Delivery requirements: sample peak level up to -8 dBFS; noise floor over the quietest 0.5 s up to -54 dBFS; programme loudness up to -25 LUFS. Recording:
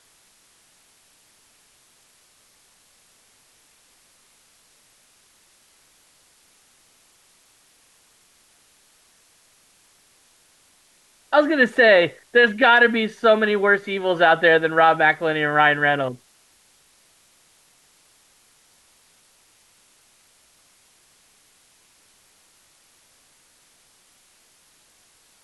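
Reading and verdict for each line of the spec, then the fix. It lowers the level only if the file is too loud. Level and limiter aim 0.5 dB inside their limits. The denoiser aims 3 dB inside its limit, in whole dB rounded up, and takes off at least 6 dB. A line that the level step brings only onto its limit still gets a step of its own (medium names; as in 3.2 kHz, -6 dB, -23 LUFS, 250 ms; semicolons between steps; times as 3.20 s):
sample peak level -5.0 dBFS: fail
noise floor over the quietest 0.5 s -58 dBFS: pass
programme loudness -17.0 LUFS: fail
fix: trim -8.5 dB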